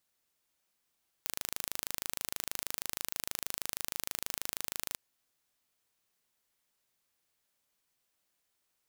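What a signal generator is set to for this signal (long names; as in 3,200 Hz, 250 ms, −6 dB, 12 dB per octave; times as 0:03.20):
impulse train 26.3 per second, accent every 0, −7.5 dBFS 3.70 s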